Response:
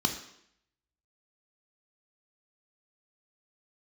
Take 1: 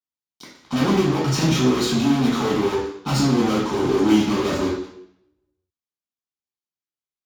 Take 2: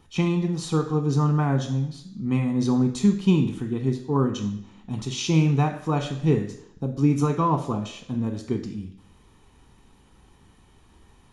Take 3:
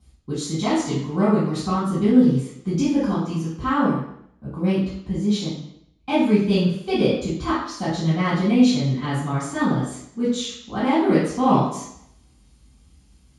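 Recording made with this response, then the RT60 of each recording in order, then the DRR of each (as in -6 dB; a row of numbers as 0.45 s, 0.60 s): 2; 0.70 s, 0.70 s, 0.70 s; -4.5 dB, 5.5 dB, -12.5 dB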